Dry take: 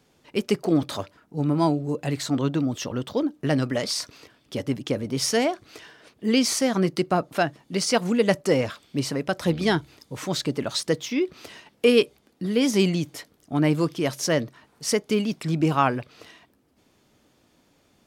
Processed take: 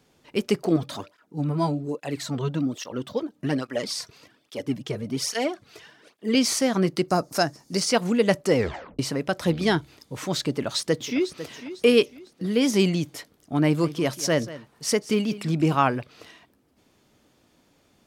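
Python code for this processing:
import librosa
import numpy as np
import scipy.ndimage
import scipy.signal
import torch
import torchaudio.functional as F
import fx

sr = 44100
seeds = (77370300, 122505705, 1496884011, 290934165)

y = fx.flanger_cancel(x, sr, hz=1.2, depth_ms=3.9, at=(0.76, 6.35))
y = fx.high_shelf_res(y, sr, hz=4200.0, db=8.5, q=3.0, at=(7.08, 7.8))
y = fx.echo_throw(y, sr, start_s=10.5, length_s=0.97, ms=500, feedback_pct=35, wet_db=-13.0)
y = fx.echo_single(y, sr, ms=186, db=-16.0, at=(13.65, 15.75))
y = fx.edit(y, sr, fx.tape_stop(start_s=8.56, length_s=0.43), tone=tone)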